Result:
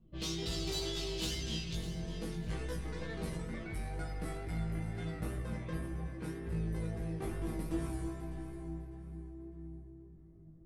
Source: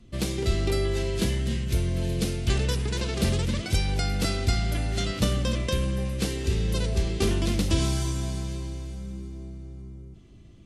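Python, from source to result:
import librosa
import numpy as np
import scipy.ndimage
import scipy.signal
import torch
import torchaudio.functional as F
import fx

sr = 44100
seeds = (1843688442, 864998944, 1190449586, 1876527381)

y = fx.env_lowpass(x, sr, base_hz=730.0, full_db=-20.0)
y = fx.band_shelf(y, sr, hz=4500.0, db=fx.steps((0.0, 10.0), (1.74, -8.5), (3.35, -15.5)), octaves=1.7)
y = 10.0 ** (-23.5 / 20.0) * np.tanh(y / 10.0 ** (-23.5 / 20.0))
y = fx.comb_fb(y, sr, f0_hz=160.0, decay_s=0.32, harmonics='all', damping=0.0, mix_pct=90)
y = fx.wow_flutter(y, sr, seeds[0], rate_hz=2.1, depth_cents=21.0)
y = fx.doubler(y, sr, ms=18.0, db=-2.5)
y = fx.echo_alternate(y, sr, ms=301, hz=900.0, feedback_pct=52, wet_db=-7.5)
y = y * librosa.db_to_amplitude(1.0)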